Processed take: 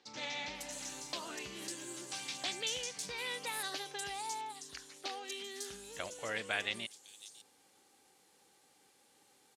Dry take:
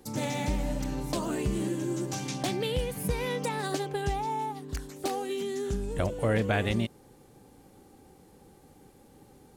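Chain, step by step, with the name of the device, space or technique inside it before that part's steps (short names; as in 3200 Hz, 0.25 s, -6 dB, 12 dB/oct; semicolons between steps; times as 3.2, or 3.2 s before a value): piezo pickup straight into a mixer (LPF 5300 Hz 12 dB/oct; differentiator); bands offset in time lows, highs 0.55 s, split 5200 Hz; gain +8.5 dB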